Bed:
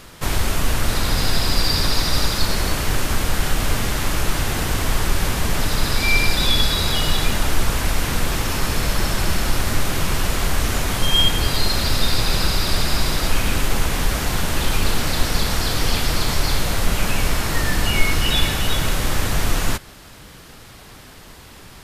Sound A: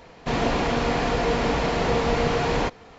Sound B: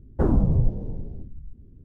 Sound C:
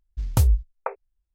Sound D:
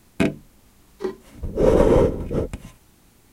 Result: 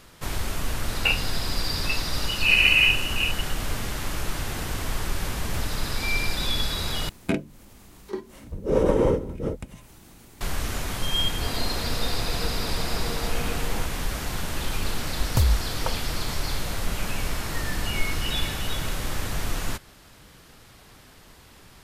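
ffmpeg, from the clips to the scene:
-filter_complex "[4:a]asplit=2[a][b];[3:a]asplit=2[c][d];[0:a]volume=-8.5dB[e];[a]lowpass=f=2.6k:t=q:w=0.5098,lowpass=f=2.6k:t=q:w=0.6013,lowpass=f=2.6k:t=q:w=0.9,lowpass=f=2.6k:t=q:w=2.563,afreqshift=-3000[f];[b]acompressor=mode=upward:threshold=-32dB:ratio=2.5:attack=3.2:release=140:knee=2.83:detection=peak[g];[e]asplit=2[h][i];[h]atrim=end=7.094[j];[g]atrim=end=3.32,asetpts=PTS-STARTPTS,volume=-5dB[k];[i]atrim=start=10.406[l];[f]atrim=end=3.32,asetpts=PTS-STARTPTS,volume=-3.5dB,afade=t=in:d=0.004:c=hsin,afade=t=out:st=3.316:d=0.004:c=hsin,adelay=850[m];[c]atrim=end=1.34,asetpts=PTS-STARTPTS,volume=-16dB,afade=t=in:d=0.004:c=hsin,afade=t=out:st=1.336:d=0.004:c=hsin,adelay=227997S[n];[1:a]atrim=end=2.98,asetpts=PTS-STARTPTS,volume=-12.5dB,afade=t=in:d=0.004:c=hsin,afade=t=out:st=2.976:d=0.004:c=hsin,adelay=11150[o];[d]atrim=end=1.34,asetpts=PTS-STARTPTS,volume=-2.5dB,afade=t=in:d=0.004:c=hsin,afade=t=out:st=1.336:d=0.004:c=hsin,adelay=15000[p];[j][k]acrossfade=d=0.004:c1=hsin:c2=hsin[q];[q][l]acrossfade=d=0.004:c1=hsin:c2=hsin[r];[r][m][n][o][p]amix=inputs=5:normalize=0"

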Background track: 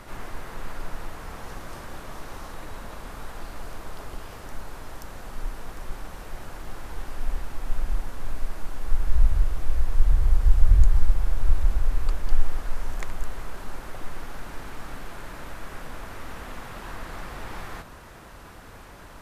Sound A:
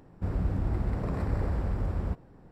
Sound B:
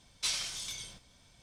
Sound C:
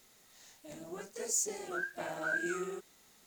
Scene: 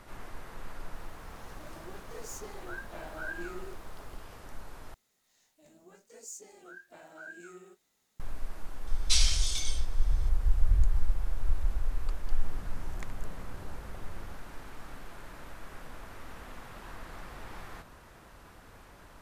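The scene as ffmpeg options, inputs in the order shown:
-filter_complex "[3:a]asplit=2[a][b];[0:a]volume=-8dB[c];[a]equalizer=f=7.6k:t=o:w=0.59:g=-11.5[d];[b]asplit=2[e][f];[f]adelay=22,volume=-11dB[g];[e][g]amix=inputs=2:normalize=0[h];[2:a]equalizer=f=5.4k:t=o:w=2.5:g=8[i];[1:a]equalizer=f=76:w=1.5:g=-4.5[j];[c]asplit=2[k][l];[k]atrim=end=4.944[m];[h]atrim=end=3.26,asetpts=PTS-STARTPTS,volume=-12.5dB[n];[l]atrim=start=8.196[o];[d]atrim=end=3.26,asetpts=PTS-STARTPTS,volume=-5dB,afade=t=in:d=0.004:c=hsin,afade=t=out:st=3.256:d=0.004:c=hsin,adelay=950[p];[i]atrim=end=1.42,asetpts=PTS-STARTPTS,volume=-1.5dB,afade=t=in:d=0.004:c=hsin,afade=t=out:st=1.416:d=0.004:c=hsin,adelay=8870[q];[j]atrim=end=2.51,asetpts=PTS-STARTPTS,volume=-15.5dB,afade=t=in:d=0.004:c=hsin,afade=t=out:st=2.506:d=0.004:c=hsin,adelay=12210[r];[m][n]acrossfade=d=0.004:c1=hsin:c2=hsin[s];[s][o]acrossfade=d=0.004:c1=hsin:c2=hsin[t];[t][p][q][r]amix=inputs=4:normalize=0"

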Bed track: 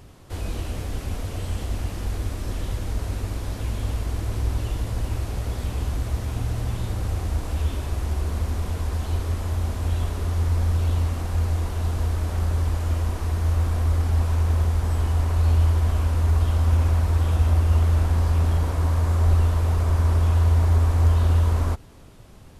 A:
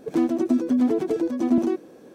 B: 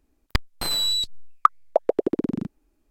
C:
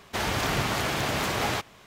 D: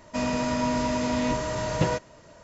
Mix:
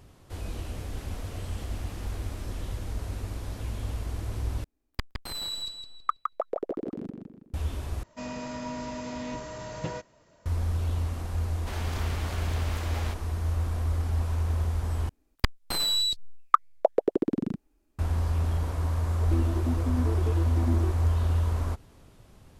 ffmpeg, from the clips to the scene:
-filter_complex "[3:a]asplit=2[a][b];[2:a]asplit=2[c][d];[0:a]volume=-6.5dB[e];[a]acompressor=threshold=-42dB:ratio=6:attack=3.2:release=140:knee=1:detection=peak[f];[c]asplit=2[g][h];[h]adelay=162,lowpass=f=4.4k:p=1,volume=-4dB,asplit=2[i][j];[j]adelay=162,lowpass=f=4.4k:p=1,volume=0.4,asplit=2[k][l];[l]adelay=162,lowpass=f=4.4k:p=1,volume=0.4,asplit=2[m][n];[n]adelay=162,lowpass=f=4.4k:p=1,volume=0.4,asplit=2[o][p];[p]adelay=162,lowpass=f=4.4k:p=1,volume=0.4[q];[g][i][k][m][o][q]amix=inputs=6:normalize=0[r];[e]asplit=4[s][t][u][v];[s]atrim=end=4.644[w];[r]atrim=end=2.9,asetpts=PTS-STARTPTS,volume=-11dB[x];[t]atrim=start=7.536:end=8.034[y];[4:a]atrim=end=2.43,asetpts=PTS-STARTPTS,volume=-10dB[z];[u]atrim=start=10.456:end=15.094[aa];[d]atrim=end=2.9,asetpts=PTS-STARTPTS,volume=-2.5dB[ab];[v]atrim=start=17.986[ac];[f]atrim=end=1.86,asetpts=PTS-STARTPTS,volume=-10.5dB,afade=t=in:d=0.004:c=hsin,afade=t=out:st=1.856:d=0.004:c=hsin,adelay=840[ad];[b]atrim=end=1.86,asetpts=PTS-STARTPTS,volume=-12dB,afade=t=in:d=0.004:c=hsin,afade=t=out:st=1.856:d=0.004:c=hsin,adelay=11530[ae];[1:a]atrim=end=2.14,asetpts=PTS-STARTPTS,volume=-11.5dB,afade=t=in:d=0.004:c=hsin,afade=t=out:st=2.136:d=0.004:c=hsin,adelay=19160[af];[w][x]acrossfade=d=0.004:c1=hsin:c2=hsin[ag];[ag][y]acrossfade=d=0.004:c1=hsin:c2=hsin[ah];[ah][z]acrossfade=d=0.004:c1=hsin:c2=hsin[ai];[ai][aa]acrossfade=d=0.004:c1=hsin:c2=hsin[aj];[aj][ab]acrossfade=d=0.004:c1=hsin:c2=hsin[ak];[ak][ac]acrossfade=d=0.004:c1=hsin:c2=hsin[al];[al][ad][ae][af]amix=inputs=4:normalize=0"

